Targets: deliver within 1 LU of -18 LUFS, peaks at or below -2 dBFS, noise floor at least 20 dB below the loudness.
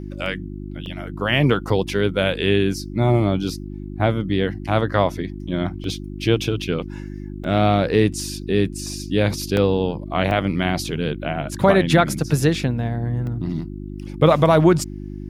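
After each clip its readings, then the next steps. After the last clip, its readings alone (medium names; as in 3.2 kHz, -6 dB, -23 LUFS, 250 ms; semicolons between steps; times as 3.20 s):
dropouts 8; longest dropout 1.5 ms; hum 50 Hz; highest harmonic 350 Hz; hum level -29 dBFS; loudness -20.5 LUFS; peak level -2.0 dBFS; loudness target -18.0 LUFS
-> interpolate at 0.26/0.86/5.84/7.44/9.57/10.31/12.55/13.27 s, 1.5 ms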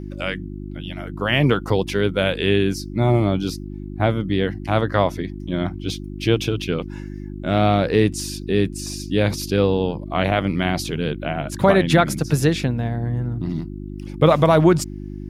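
dropouts 0; hum 50 Hz; highest harmonic 350 Hz; hum level -29 dBFS
-> de-hum 50 Hz, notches 7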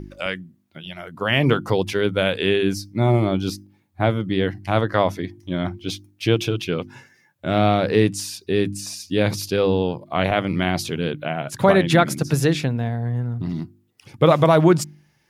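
hum not found; loudness -21.0 LUFS; peak level -2.5 dBFS; loudness target -18.0 LUFS
-> trim +3 dB; peak limiter -2 dBFS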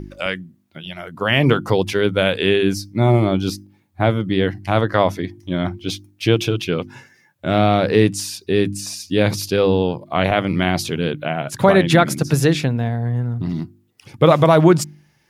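loudness -18.5 LUFS; peak level -2.0 dBFS; noise floor -60 dBFS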